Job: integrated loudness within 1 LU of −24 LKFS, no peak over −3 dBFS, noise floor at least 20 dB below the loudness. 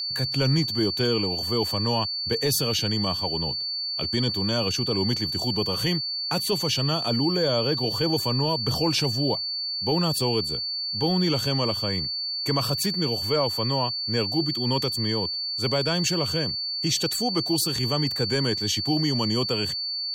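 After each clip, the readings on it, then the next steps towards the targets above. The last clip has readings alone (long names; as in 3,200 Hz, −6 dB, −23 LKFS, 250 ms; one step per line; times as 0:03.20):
interfering tone 4,500 Hz; level of the tone −27 dBFS; integrated loudness −24.0 LKFS; sample peak −13.0 dBFS; target loudness −24.0 LKFS
→ notch filter 4,500 Hz, Q 30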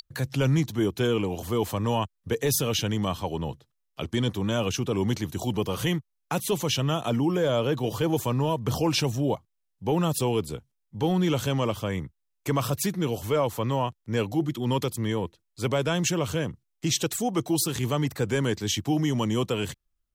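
interfering tone none found; integrated loudness −27.0 LKFS; sample peak −13.0 dBFS; target loudness −24.0 LKFS
→ level +3 dB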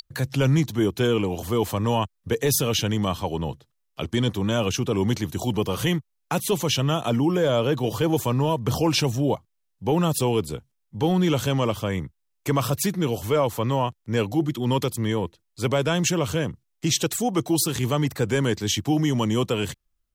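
integrated loudness −24.0 LKFS; sample peak −10.0 dBFS; background noise floor −74 dBFS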